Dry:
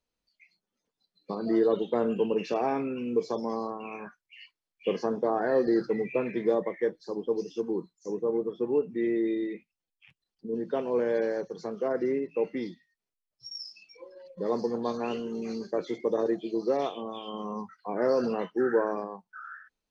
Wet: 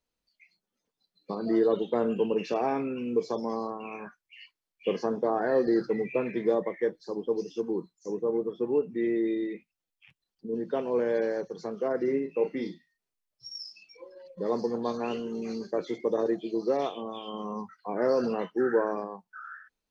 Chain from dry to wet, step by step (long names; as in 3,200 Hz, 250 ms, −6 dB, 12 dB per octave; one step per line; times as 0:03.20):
0:12.04–0:13.64: double-tracking delay 37 ms −8 dB